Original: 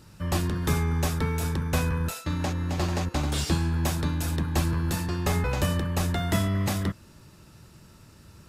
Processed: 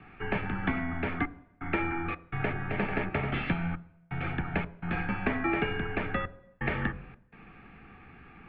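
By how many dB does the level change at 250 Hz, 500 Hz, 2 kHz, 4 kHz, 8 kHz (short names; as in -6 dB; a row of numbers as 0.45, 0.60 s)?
-4.0 dB, -2.5 dB, +3.0 dB, -11.0 dB, under -40 dB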